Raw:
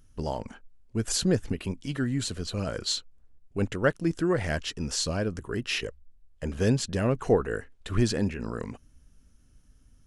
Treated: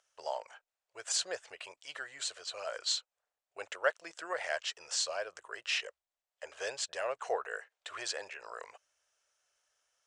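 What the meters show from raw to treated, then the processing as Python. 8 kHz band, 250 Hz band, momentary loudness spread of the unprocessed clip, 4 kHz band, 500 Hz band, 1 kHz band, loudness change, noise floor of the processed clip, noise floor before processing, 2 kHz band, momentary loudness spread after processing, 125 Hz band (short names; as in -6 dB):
-3.5 dB, -32.0 dB, 11 LU, -3.0 dB, -10.0 dB, -3.0 dB, -7.5 dB, under -85 dBFS, -59 dBFS, -3.0 dB, 15 LU, under -40 dB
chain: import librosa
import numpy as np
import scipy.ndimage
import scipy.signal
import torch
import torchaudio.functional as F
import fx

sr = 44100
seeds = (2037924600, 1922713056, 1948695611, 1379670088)

y = scipy.signal.sosfilt(scipy.signal.ellip(3, 1.0, 40, [600.0, 8200.0], 'bandpass', fs=sr, output='sos'), x)
y = F.gain(torch.from_numpy(y), -2.5).numpy()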